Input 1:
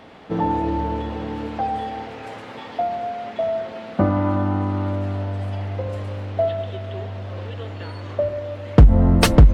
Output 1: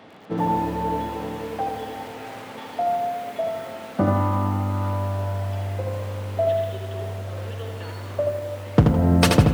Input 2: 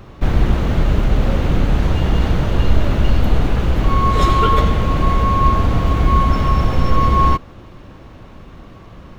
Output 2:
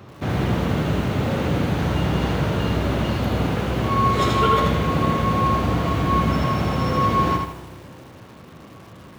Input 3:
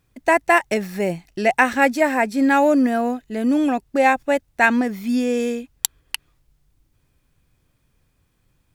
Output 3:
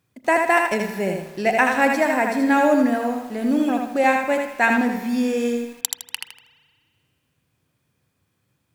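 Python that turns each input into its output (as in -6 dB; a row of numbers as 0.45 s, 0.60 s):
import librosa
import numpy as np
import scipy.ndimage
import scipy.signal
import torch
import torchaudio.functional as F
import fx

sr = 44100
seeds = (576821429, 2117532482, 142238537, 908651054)

y = scipy.signal.sosfilt(scipy.signal.butter(4, 92.0, 'highpass', fs=sr, output='sos'), x)
y = fx.rev_spring(y, sr, rt60_s=1.9, pass_ms=(31,), chirp_ms=30, drr_db=11.0)
y = fx.echo_crushed(y, sr, ms=80, feedback_pct=35, bits=7, wet_db=-4.0)
y = y * 10.0 ** (-2.5 / 20.0)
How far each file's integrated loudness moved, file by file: -2.5 LU, -4.0 LU, -1.0 LU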